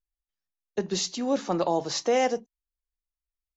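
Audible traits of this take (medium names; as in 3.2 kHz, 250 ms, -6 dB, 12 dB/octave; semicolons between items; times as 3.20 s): noise floor -92 dBFS; spectral tilt -3.5 dB/octave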